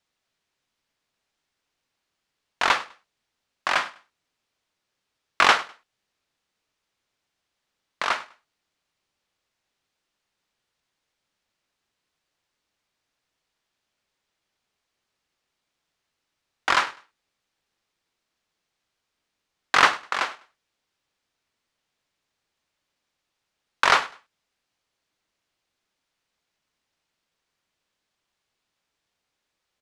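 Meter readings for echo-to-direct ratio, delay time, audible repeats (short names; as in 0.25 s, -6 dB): -19.5 dB, 0.101 s, 2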